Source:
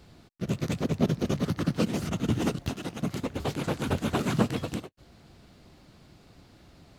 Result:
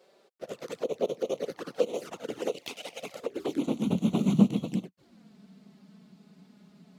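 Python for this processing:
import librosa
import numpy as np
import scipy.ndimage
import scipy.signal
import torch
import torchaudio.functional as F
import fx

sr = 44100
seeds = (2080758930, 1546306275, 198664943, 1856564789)

y = fx.high_shelf_res(x, sr, hz=1900.0, db=6.5, q=3.0, at=(2.52, 3.12))
y = fx.filter_sweep_highpass(y, sr, from_hz=490.0, to_hz=190.0, start_s=3.17, end_s=3.9, q=4.6)
y = fx.env_flanger(y, sr, rest_ms=5.7, full_db=-22.0)
y = y * librosa.db_to_amplitude(-4.0)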